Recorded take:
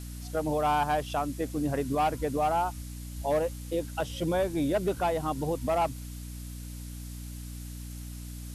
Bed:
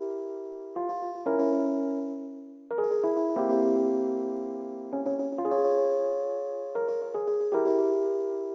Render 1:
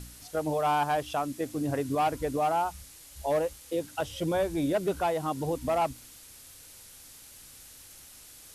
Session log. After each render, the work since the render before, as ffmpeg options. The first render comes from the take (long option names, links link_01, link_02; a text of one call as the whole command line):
ffmpeg -i in.wav -af "bandreject=frequency=60:width_type=h:width=4,bandreject=frequency=120:width_type=h:width=4,bandreject=frequency=180:width_type=h:width=4,bandreject=frequency=240:width_type=h:width=4,bandreject=frequency=300:width_type=h:width=4" out.wav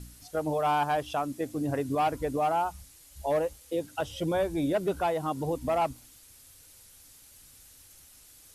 ffmpeg -i in.wav -af "afftdn=noise_reduction=6:noise_floor=-51" out.wav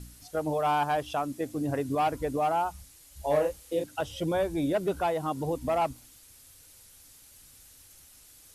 ffmpeg -i in.wav -filter_complex "[0:a]asettb=1/sr,asplit=3[link_01][link_02][link_03];[link_01]atrim=end=3.214[link_04];[link_02]atrim=start=3.21:end=3.84,asetpts=PTS-STARTPTS,afade=type=in:duration=0.004:curve=qsin,afade=type=out:start_time=0.626:duration=0.004:curve=qsin,asplit=2[link_05][link_06];[link_06]adelay=34,volume=-3.5dB[link_07];[link_05][link_07]amix=inputs=2:normalize=0,atrim=end_sample=27783[link_08];[link_03]atrim=start=3.836[link_09];[link_04][link_08]acrossfade=duration=0.004:curve1=hsin:curve2=qsin[link_10];[link_10][link_09]acrossfade=duration=0.004:curve1=qsin:curve2=hsin" out.wav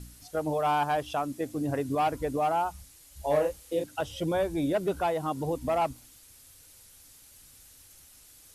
ffmpeg -i in.wav -af anull out.wav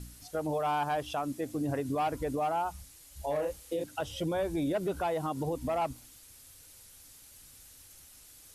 ffmpeg -i in.wav -af "alimiter=level_in=0.5dB:limit=-24dB:level=0:latency=1:release=58,volume=-0.5dB" out.wav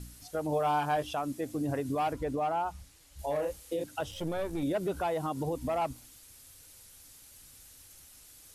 ffmpeg -i in.wav -filter_complex "[0:a]asettb=1/sr,asplit=3[link_01][link_02][link_03];[link_01]atrim=end=0.504[link_04];[link_02]atrim=start=0.5:end=1.1,asetpts=PTS-STARTPTS,afade=type=in:duration=0.004:curve=qsin,afade=type=out:start_time=0.596:duration=0.004:curve=qsin,asplit=2[link_05][link_06];[link_06]adelay=20,volume=-7dB[link_07];[link_05][link_07]amix=inputs=2:normalize=0,atrim=end_sample=26460[link_08];[link_03]atrim=start=1.096[link_09];[link_04][link_08]acrossfade=duration=0.004:curve1=hsin:curve2=qsin[link_10];[link_10][link_09]acrossfade=duration=0.004:curve1=qsin:curve2=hsin,asettb=1/sr,asplit=3[link_11][link_12][link_13];[link_11]atrim=end=2.134[link_14];[link_12]atrim=start=2.13:end=3.19,asetpts=PTS-STARTPTS,afade=type=in:duration=0.004:curve=qsin,afade=type=out:start_time=1.056:duration=0.004:curve=qsin,highshelf=frequency=7200:gain=-11[link_15];[link_13]atrim=start=3.186[link_16];[link_14][link_15]acrossfade=duration=0.004:curve1=hsin:curve2=qsin[link_17];[link_17][link_16]acrossfade=duration=0.004:curve1=qsin:curve2=hsin,asettb=1/sr,asplit=3[link_18][link_19][link_20];[link_18]atrim=end=4.114[link_21];[link_19]atrim=start=4.11:end=4.63,asetpts=PTS-STARTPTS,afade=type=in:duration=0.004:curve=qsin,afade=type=out:start_time=0.516:duration=0.004:curve=qsin,aeval=exprs='if(lt(val(0),0),0.447*val(0),val(0))':channel_layout=same[link_22];[link_20]atrim=start=4.626[link_23];[link_21][link_22]acrossfade=duration=0.004:curve1=hsin:curve2=qsin[link_24];[link_24][link_23]acrossfade=duration=0.004:curve1=qsin:curve2=hsin" out.wav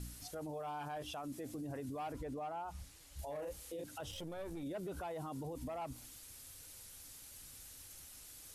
ffmpeg -i in.wav -af "acompressor=threshold=-35dB:ratio=4,alimiter=level_in=13dB:limit=-24dB:level=0:latency=1:release=22,volume=-13dB" out.wav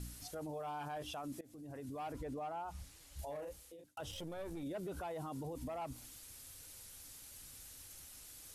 ffmpeg -i in.wav -filter_complex "[0:a]asplit=3[link_01][link_02][link_03];[link_01]atrim=end=1.41,asetpts=PTS-STARTPTS,afade=type=out:start_time=1.406:duration=0.004:curve=hsin:silence=0.112202[link_04];[link_02]atrim=start=1.41:end=3.97,asetpts=PTS-STARTPTS,afade=type=in:duration=0.93:curve=qsin:silence=0.112202,afade=type=out:start_time=1.86:duration=0.7[link_05];[link_03]atrim=start=3.97,asetpts=PTS-STARTPTS,afade=type=in:duration=0.004:curve=hsin[link_06];[link_04][link_05][link_06]concat=n=3:v=0:a=1" out.wav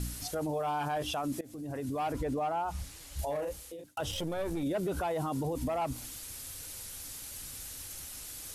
ffmpeg -i in.wav -af "volume=10.5dB" out.wav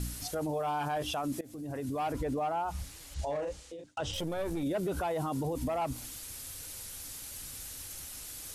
ffmpeg -i in.wav -filter_complex "[0:a]asettb=1/sr,asplit=3[link_01][link_02][link_03];[link_01]atrim=end=3.144[link_04];[link_02]atrim=start=3.14:end=4.14,asetpts=PTS-STARTPTS,afade=type=in:duration=0.004:curve=qsin,afade=type=out:start_time=0.996:duration=0.004:curve=qsin,lowpass=frequency=7700:width=0.5412,lowpass=frequency=7700:width=1.3066[link_05];[link_03]atrim=start=4.136[link_06];[link_04][link_05]acrossfade=duration=0.004:curve1=hsin:curve2=qsin[link_07];[link_07][link_06]acrossfade=duration=0.004:curve1=qsin:curve2=hsin" out.wav